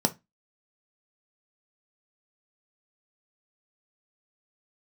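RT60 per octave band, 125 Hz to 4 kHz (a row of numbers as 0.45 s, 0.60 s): 0.30 s, 0.30 s, 0.20 s, 0.20 s, 0.20 s, 0.20 s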